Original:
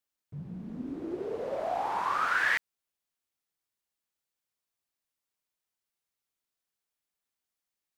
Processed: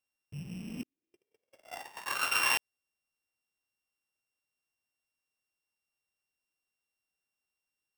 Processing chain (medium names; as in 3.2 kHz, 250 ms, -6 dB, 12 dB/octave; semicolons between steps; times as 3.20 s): sorted samples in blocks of 16 samples; 0.83–2.51 s: gate -28 dBFS, range -54 dB; trim -1 dB